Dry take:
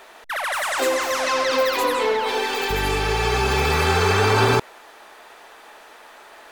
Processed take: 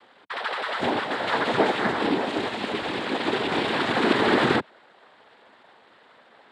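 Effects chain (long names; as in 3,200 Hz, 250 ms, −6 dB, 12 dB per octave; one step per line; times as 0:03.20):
single-sideband voice off tune −80 Hz 180–3,200 Hz
cochlear-implant simulation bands 6
expander for the loud parts 1.5 to 1, over −32 dBFS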